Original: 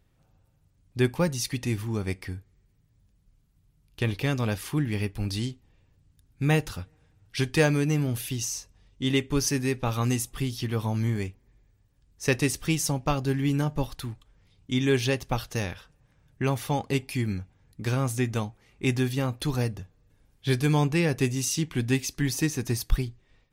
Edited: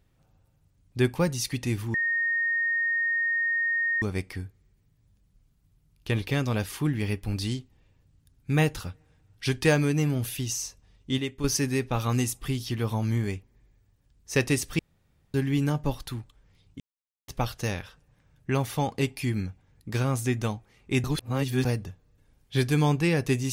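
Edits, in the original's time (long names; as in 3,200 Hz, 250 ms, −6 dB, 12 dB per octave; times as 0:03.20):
0:01.94: insert tone 1,850 Hz −23 dBFS 2.08 s
0:09.10–0:09.36: clip gain −7 dB
0:12.71–0:13.26: fill with room tone
0:14.72–0:15.20: silence
0:18.96–0:19.57: reverse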